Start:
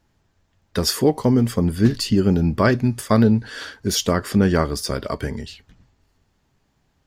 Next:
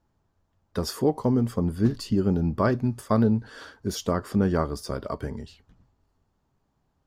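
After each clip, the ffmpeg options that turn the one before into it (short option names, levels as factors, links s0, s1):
-af "highshelf=f=1500:t=q:w=1.5:g=-6,volume=0.501"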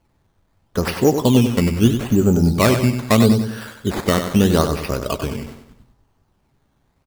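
-af "acrusher=samples=12:mix=1:aa=0.000001:lfo=1:lforange=12:lforate=0.78,aecho=1:1:95|190|285|380|475:0.398|0.167|0.0702|0.0295|0.0124,volume=2.37"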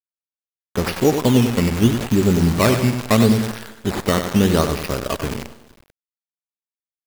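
-filter_complex "[0:a]asplit=2[s0][s1];[s1]adelay=400,highpass=300,lowpass=3400,asoftclip=type=hard:threshold=0.282,volume=0.0891[s2];[s0][s2]amix=inputs=2:normalize=0,acrusher=bits=5:dc=4:mix=0:aa=0.000001,volume=0.891"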